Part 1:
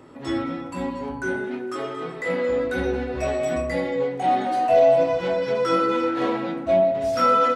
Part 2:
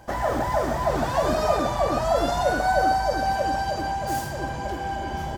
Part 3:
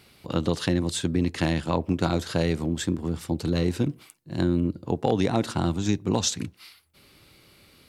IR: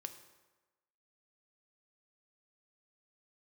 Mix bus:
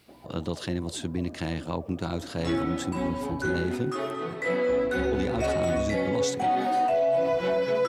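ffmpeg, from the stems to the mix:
-filter_complex "[0:a]adelay=2200,volume=-1.5dB[a];[1:a]bandpass=f=300:t=q:w=2.2:csg=0,volume=-13.5dB[b];[2:a]acrusher=bits=10:mix=0:aa=0.000001,volume=-6dB,asplit=3[c][d][e];[c]atrim=end=4.34,asetpts=PTS-STARTPTS,afade=t=out:st=4.336:d=0.004:c=hsin[f];[d]atrim=start=4.34:end=5.12,asetpts=PTS-STARTPTS,volume=0[g];[e]atrim=start=5.12,asetpts=PTS-STARTPTS,afade=t=in:d=0.004:c=hsin[h];[f][g][h]concat=n=3:v=0:a=1[i];[a][b][i]amix=inputs=3:normalize=0,alimiter=limit=-17.5dB:level=0:latency=1:release=13"

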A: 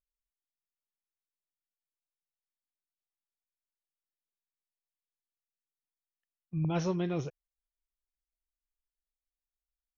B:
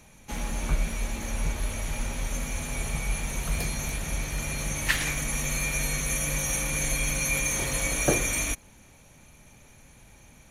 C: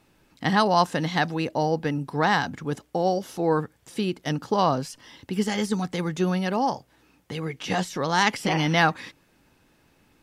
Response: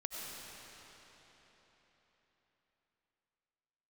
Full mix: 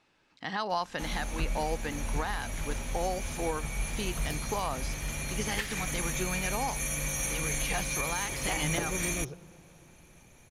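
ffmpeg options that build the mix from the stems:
-filter_complex "[0:a]adelay=2050,volume=-5.5dB,asplit=2[a][b];[b]volume=-14dB[c];[1:a]adelay=700,volume=-4dB[d];[2:a]lowpass=5.5k,lowshelf=f=460:g=-12,alimiter=limit=-16.5dB:level=0:latency=1:release=178,volume=-2.5dB[e];[3:a]atrim=start_sample=2205[f];[c][f]afir=irnorm=-1:irlink=0[g];[a][d][e][g]amix=inputs=4:normalize=0,alimiter=limit=-19.5dB:level=0:latency=1:release=263"

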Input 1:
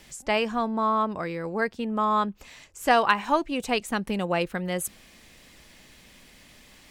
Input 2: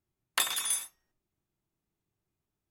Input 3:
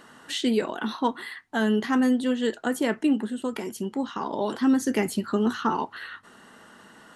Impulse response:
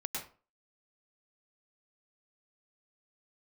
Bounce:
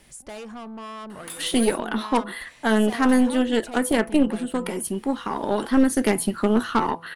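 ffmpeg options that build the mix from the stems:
-filter_complex "[0:a]highshelf=f=2k:g=-6,volume=-1dB[a];[1:a]adelay=900,volume=-5.5dB[b];[2:a]equalizer=f=6.7k:w=1.4:g=-5.5,aeval=exprs='0.316*(cos(1*acos(clip(val(0)/0.316,-1,1)))-cos(1*PI/2))+0.0631*(cos(6*acos(clip(val(0)/0.316,-1,1)))-cos(6*PI/2))+0.0316*(cos(8*acos(clip(val(0)/0.316,-1,1)))-cos(8*PI/2))':c=same,adelay=1100,volume=2.5dB[c];[a][b]amix=inputs=2:normalize=0,asoftclip=type=tanh:threshold=-30.5dB,acompressor=threshold=-36dB:ratio=4,volume=0dB[d];[c][d]amix=inputs=2:normalize=0,equalizer=f=9.7k:w=4:g=14.5,bandreject=f=167.6:t=h:w=4,bandreject=f=335.2:t=h:w=4,bandreject=f=502.8:t=h:w=4,bandreject=f=670.4:t=h:w=4,bandreject=f=838:t=h:w=4,bandreject=f=1.0056k:t=h:w=4,bandreject=f=1.1732k:t=h:w=4"

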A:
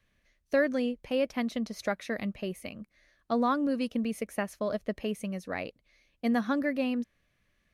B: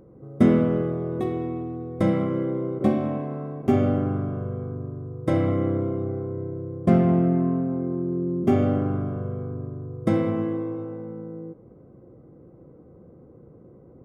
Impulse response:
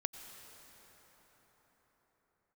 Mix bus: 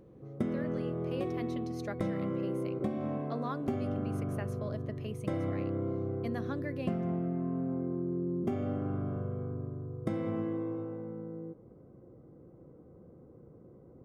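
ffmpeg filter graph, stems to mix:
-filter_complex "[0:a]bandreject=f=245.6:t=h:w=4,bandreject=f=491.2:t=h:w=4,bandreject=f=736.8:t=h:w=4,bandreject=f=982.4:t=h:w=4,bandreject=f=1.228k:t=h:w=4,bandreject=f=1.4736k:t=h:w=4,bandreject=f=1.7192k:t=h:w=4,bandreject=f=1.9648k:t=h:w=4,bandreject=f=2.2104k:t=h:w=4,bandreject=f=2.456k:t=h:w=4,bandreject=f=2.7016k:t=h:w=4,bandreject=f=2.9472k:t=h:w=4,bandreject=f=3.1928k:t=h:w=4,bandreject=f=3.4384k:t=h:w=4,bandreject=f=3.684k:t=h:w=4,bandreject=f=3.9296k:t=h:w=4,bandreject=f=4.1752k:t=h:w=4,bandreject=f=4.4208k:t=h:w=4,volume=-9.5dB[a];[1:a]volume=-5.5dB[b];[a][b]amix=inputs=2:normalize=0,acompressor=threshold=-29dB:ratio=10"

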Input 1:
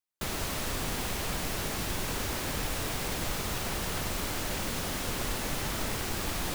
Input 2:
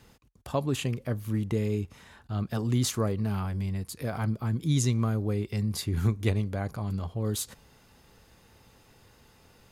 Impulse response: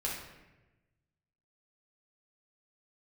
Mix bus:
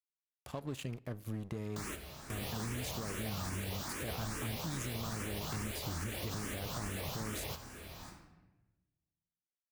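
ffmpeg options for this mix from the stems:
-filter_complex "[0:a]highpass=44,asplit=2[a][b];[b]afreqshift=2.4[c];[a][c]amix=inputs=2:normalize=1,adelay=1550,volume=-6dB,asplit=2[d][e];[e]volume=-11dB[f];[1:a]acompressor=threshold=-31dB:ratio=6,aeval=exprs='sgn(val(0))*max(abs(val(0))-0.00562,0)':c=same,volume=-3.5dB,asplit=3[g][h][i];[h]volume=-24dB[j];[i]apad=whole_len=356879[k];[d][k]sidechaingate=range=-33dB:threshold=-56dB:ratio=16:detection=peak[l];[2:a]atrim=start_sample=2205[m];[f][j]amix=inputs=2:normalize=0[n];[n][m]afir=irnorm=-1:irlink=0[o];[l][g][o]amix=inputs=3:normalize=0,alimiter=level_in=5dB:limit=-24dB:level=0:latency=1:release=48,volume=-5dB"

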